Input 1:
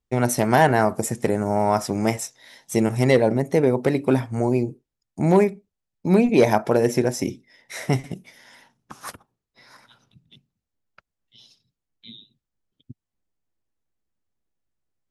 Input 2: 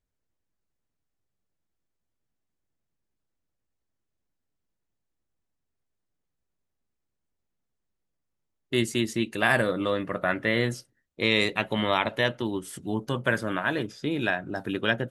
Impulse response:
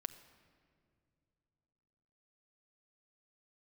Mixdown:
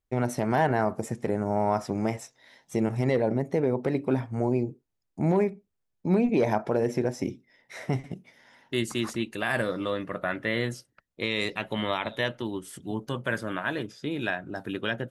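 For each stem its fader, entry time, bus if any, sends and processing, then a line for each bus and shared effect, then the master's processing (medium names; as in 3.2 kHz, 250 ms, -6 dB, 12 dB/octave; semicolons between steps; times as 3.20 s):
-4.5 dB, 0.00 s, no send, low-pass 2.6 kHz 6 dB/octave
-3.0 dB, 0.00 s, no send, none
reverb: none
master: peak limiter -14.5 dBFS, peak gain reduction 4.5 dB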